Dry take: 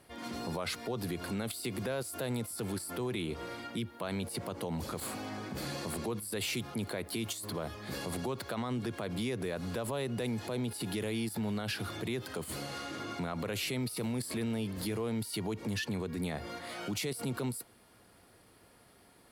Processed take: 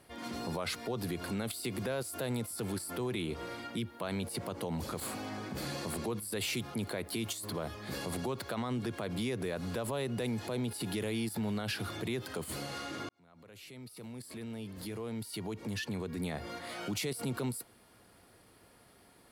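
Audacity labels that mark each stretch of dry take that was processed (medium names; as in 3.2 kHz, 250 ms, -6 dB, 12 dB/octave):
13.090000	16.610000	fade in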